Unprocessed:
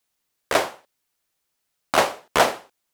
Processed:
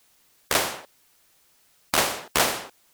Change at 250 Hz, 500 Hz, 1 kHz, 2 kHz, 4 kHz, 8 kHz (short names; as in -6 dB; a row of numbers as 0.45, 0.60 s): -2.5, -7.0, -5.5, -2.0, +1.5, +5.0 dB